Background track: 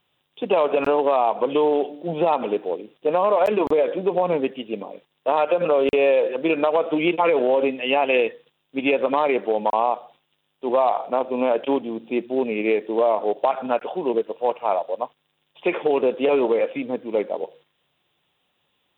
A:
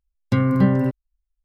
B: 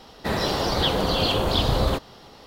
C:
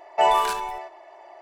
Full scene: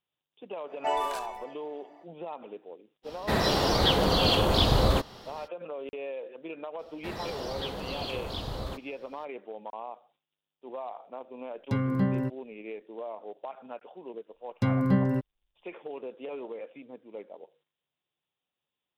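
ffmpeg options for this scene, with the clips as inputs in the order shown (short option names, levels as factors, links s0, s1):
-filter_complex "[2:a]asplit=2[s0][s1];[1:a]asplit=2[s2][s3];[0:a]volume=0.106[s4];[3:a]atrim=end=1.41,asetpts=PTS-STARTPTS,volume=0.316,afade=t=in:d=0.05,afade=t=out:st=1.36:d=0.05,adelay=660[s5];[s0]atrim=end=2.46,asetpts=PTS-STARTPTS,volume=0.891,afade=t=in:d=0.05,afade=t=out:st=2.41:d=0.05,adelay=3030[s6];[s1]atrim=end=2.46,asetpts=PTS-STARTPTS,volume=0.2,afade=t=in:d=0.004:c=hsin,afade=t=out:st=2.456:d=0.004:c=hsin,adelay=6790[s7];[s2]atrim=end=1.44,asetpts=PTS-STARTPTS,volume=0.335,afade=t=in:d=0.004:c=hsin,afade=t=out:st=1.436:d=0.004:c=hsin,adelay=11390[s8];[s3]atrim=end=1.44,asetpts=PTS-STARTPTS,volume=0.447,afade=t=in:d=0.004:c=hsin,afade=t=out:st=1.436:d=0.004:c=hsin,adelay=14300[s9];[s4][s5][s6][s7][s8][s9]amix=inputs=6:normalize=0"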